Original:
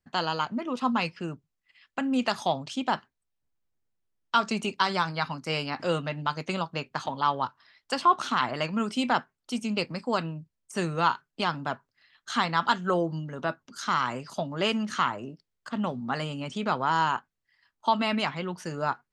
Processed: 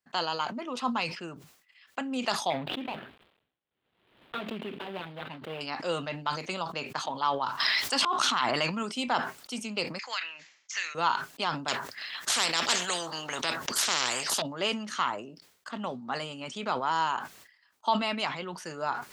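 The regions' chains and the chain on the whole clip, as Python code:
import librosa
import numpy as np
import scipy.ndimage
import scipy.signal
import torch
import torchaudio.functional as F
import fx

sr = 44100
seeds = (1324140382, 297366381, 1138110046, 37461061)

y = fx.chain(x, sr, fx.median_filter(points=41),
    fx.high_shelf_res(hz=4500.0, db=-11.0, q=3.0),
    fx.pre_swell(db_per_s=57.0), at=(2.5, 5.61))
y = fx.chain(y, sr, fx.peak_eq(hz=530.0, db=-4.0, octaves=1.1),
    fx.auto_swell(attack_ms=282.0),
    fx.env_flatten(amount_pct=100), at=(7.46, 8.83))
y = fx.chain(y, sr, fx.highpass_res(hz=2000.0, q=3.6),
    fx.resample_bad(factor=3, down='none', up='filtered'),
    fx.band_squash(depth_pct=70), at=(9.99, 10.95))
y = fx.chain(y, sr, fx.peak_eq(hz=1800.0, db=7.0, octaves=0.31),
    fx.spectral_comp(ratio=4.0), at=(11.68, 14.42))
y = fx.dynamic_eq(y, sr, hz=1600.0, q=1.3, threshold_db=-40.0, ratio=4.0, max_db=-4)
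y = fx.highpass(y, sr, hz=550.0, slope=6)
y = fx.sustainer(y, sr, db_per_s=86.0)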